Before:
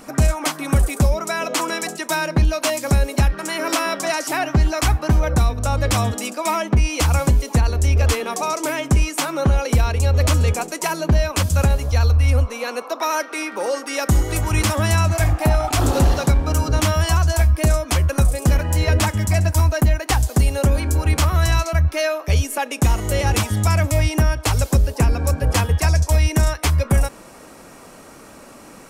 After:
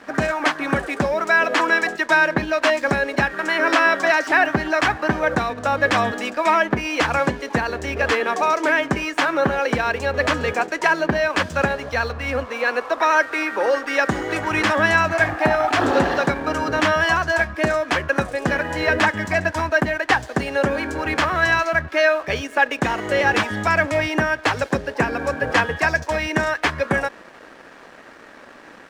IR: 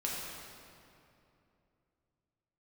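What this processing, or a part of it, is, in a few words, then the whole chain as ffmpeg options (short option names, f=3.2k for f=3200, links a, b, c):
pocket radio on a weak battery: -af "highpass=260,lowpass=3.2k,aeval=exprs='sgn(val(0))*max(abs(val(0))-0.00398,0)':c=same,equalizer=f=1.7k:t=o:w=0.33:g=10,volume=4dB"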